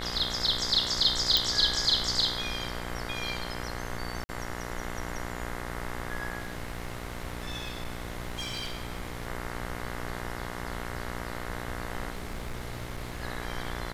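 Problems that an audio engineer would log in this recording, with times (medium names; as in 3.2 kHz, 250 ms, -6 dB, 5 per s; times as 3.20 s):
buzz 60 Hz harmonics 36 -38 dBFS
1.37 s: pop
4.24–4.29 s: dropout 50 ms
6.38–9.27 s: clipped -30 dBFS
12.10–13.23 s: clipped -31.5 dBFS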